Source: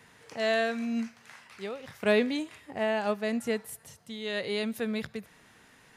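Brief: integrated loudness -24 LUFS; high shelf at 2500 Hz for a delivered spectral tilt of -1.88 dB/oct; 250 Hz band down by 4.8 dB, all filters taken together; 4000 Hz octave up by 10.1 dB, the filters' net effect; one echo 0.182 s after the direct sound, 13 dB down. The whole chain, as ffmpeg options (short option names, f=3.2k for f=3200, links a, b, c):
-af "equalizer=f=250:t=o:g=-5.5,highshelf=f=2.5k:g=8,equalizer=f=4k:t=o:g=5.5,aecho=1:1:182:0.224,volume=4.5dB"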